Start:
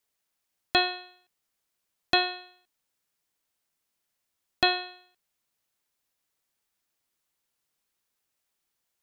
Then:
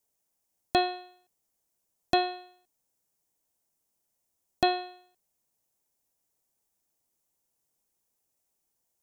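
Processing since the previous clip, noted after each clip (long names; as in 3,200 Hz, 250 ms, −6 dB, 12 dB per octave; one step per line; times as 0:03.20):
flat-topped bell 2,300 Hz −10 dB 2.3 octaves
level +2.5 dB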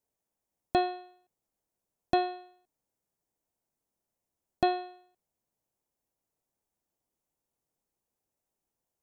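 high-shelf EQ 2,000 Hz −10.5 dB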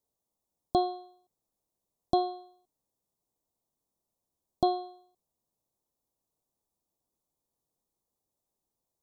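elliptic band-stop filter 1,200–3,500 Hz
level +1 dB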